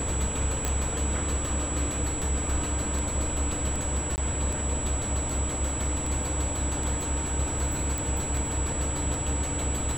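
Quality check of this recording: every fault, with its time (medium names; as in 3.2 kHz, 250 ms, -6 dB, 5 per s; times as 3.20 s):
tick 78 rpm
whine 7.8 kHz -32 dBFS
0.65 s: pop -13 dBFS
4.16–4.18 s: dropout 19 ms
7.98 s: pop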